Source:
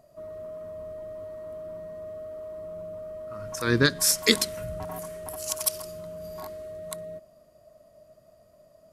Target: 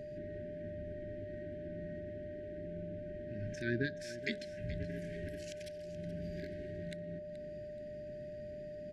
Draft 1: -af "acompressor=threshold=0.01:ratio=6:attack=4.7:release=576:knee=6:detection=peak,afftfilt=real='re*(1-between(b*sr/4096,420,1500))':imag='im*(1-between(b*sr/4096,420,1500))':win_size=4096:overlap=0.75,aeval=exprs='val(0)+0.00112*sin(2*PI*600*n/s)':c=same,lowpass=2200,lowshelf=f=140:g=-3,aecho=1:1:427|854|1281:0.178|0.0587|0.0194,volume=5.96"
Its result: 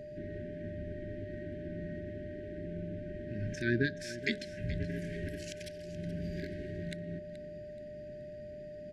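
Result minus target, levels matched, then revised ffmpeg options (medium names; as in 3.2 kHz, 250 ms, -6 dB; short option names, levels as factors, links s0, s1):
compression: peak gain reduction -5 dB
-af "acompressor=threshold=0.00501:ratio=6:attack=4.7:release=576:knee=6:detection=peak,afftfilt=real='re*(1-between(b*sr/4096,420,1500))':imag='im*(1-between(b*sr/4096,420,1500))':win_size=4096:overlap=0.75,aeval=exprs='val(0)+0.00112*sin(2*PI*600*n/s)':c=same,lowpass=2200,lowshelf=f=140:g=-3,aecho=1:1:427|854|1281:0.178|0.0587|0.0194,volume=5.96"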